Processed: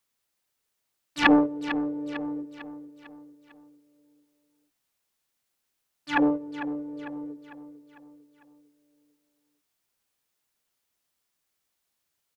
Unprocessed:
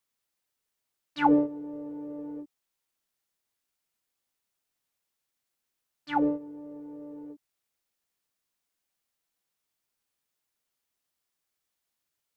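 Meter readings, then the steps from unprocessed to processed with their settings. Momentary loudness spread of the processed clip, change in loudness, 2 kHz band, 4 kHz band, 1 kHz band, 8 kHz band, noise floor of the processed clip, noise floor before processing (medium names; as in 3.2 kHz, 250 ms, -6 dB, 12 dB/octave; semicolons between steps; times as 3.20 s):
22 LU, +2.0 dB, +12.0 dB, +11.0 dB, 0.0 dB, no reading, -80 dBFS, -84 dBFS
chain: self-modulated delay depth 0.56 ms; feedback delay 450 ms, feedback 47%, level -12 dB; trim +4 dB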